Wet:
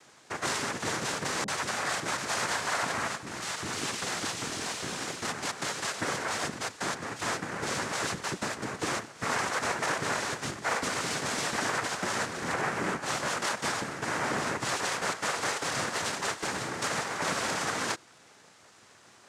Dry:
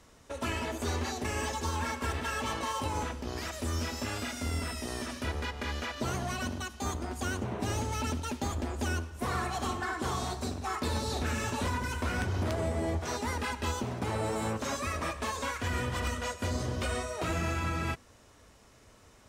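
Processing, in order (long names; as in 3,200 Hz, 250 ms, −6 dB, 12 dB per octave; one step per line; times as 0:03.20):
high-pass filter 230 Hz
low-shelf EQ 410 Hz −6.5 dB
cochlear-implant simulation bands 3
0:01.44–0:03.65: multiband delay without the direct sound lows, highs 40 ms, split 430 Hz
level +5.5 dB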